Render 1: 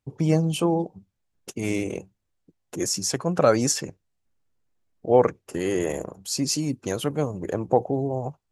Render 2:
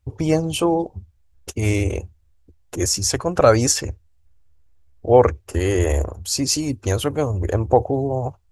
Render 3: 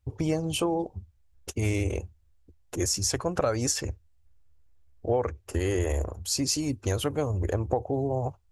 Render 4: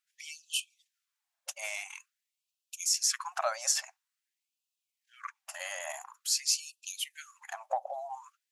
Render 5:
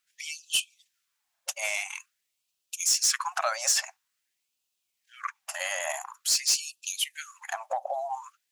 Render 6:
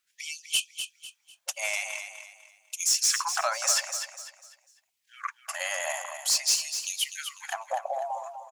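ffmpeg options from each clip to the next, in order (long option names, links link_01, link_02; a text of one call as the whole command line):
ffmpeg -i in.wav -af "lowshelf=frequency=110:width_type=q:width=3:gain=13.5,volume=5.5dB" out.wav
ffmpeg -i in.wav -af "acompressor=threshold=-18dB:ratio=6,volume=-4.5dB" out.wav
ffmpeg -i in.wav -af "afftfilt=real='re*gte(b*sr/1024,530*pow(2500/530,0.5+0.5*sin(2*PI*0.48*pts/sr)))':imag='im*gte(b*sr/1024,530*pow(2500/530,0.5+0.5*sin(2*PI*0.48*pts/sr)))':win_size=1024:overlap=0.75" out.wav
ffmpeg -i in.wav -filter_complex "[0:a]acrossover=split=1300|2500[link_01][link_02][link_03];[link_01]alimiter=level_in=5dB:limit=-24dB:level=0:latency=1:release=168,volume=-5dB[link_04];[link_03]asoftclip=type=tanh:threshold=-25dB[link_05];[link_04][link_02][link_05]amix=inputs=3:normalize=0,volume=7.5dB" out.wav
ffmpeg -i in.wav -af "aecho=1:1:249|498|747|996:0.376|0.124|0.0409|0.0135" out.wav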